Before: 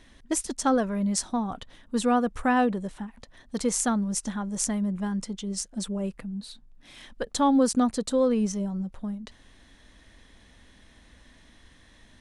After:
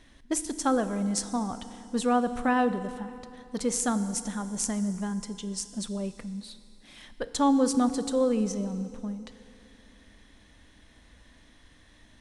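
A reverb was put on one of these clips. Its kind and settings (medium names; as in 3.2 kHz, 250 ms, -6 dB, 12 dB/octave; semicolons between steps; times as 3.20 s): FDN reverb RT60 2.8 s, low-frequency decay 1.25×, high-frequency decay 0.95×, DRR 11 dB; trim -2 dB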